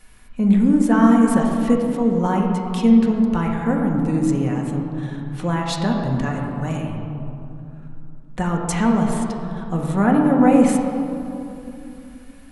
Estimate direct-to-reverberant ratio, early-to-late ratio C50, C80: −1.0 dB, 2.5 dB, 3.5 dB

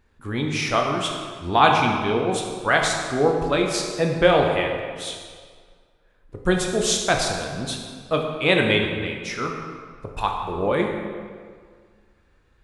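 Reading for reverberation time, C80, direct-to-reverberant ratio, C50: 1.8 s, 4.5 dB, 1.0 dB, 3.0 dB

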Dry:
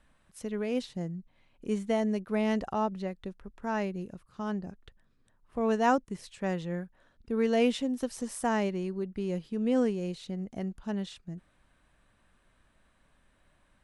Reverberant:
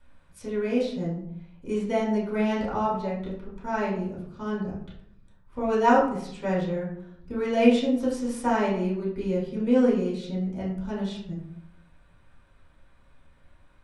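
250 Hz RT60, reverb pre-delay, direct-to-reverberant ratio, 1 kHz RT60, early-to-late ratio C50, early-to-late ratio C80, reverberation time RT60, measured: 0.95 s, 4 ms, −6.5 dB, 0.65 s, 4.5 dB, 8.0 dB, 0.70 s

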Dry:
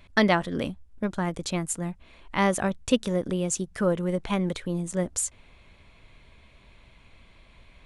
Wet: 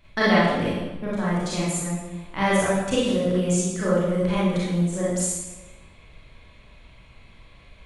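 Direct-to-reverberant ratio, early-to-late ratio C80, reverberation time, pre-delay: −9.0 dB, 1.5 dB, 1.2 s, 29 ms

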